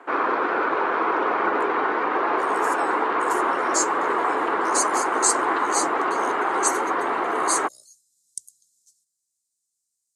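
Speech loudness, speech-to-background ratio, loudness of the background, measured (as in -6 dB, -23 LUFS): -27.0 LUFS, -4.5 dB, -22.5 LUFS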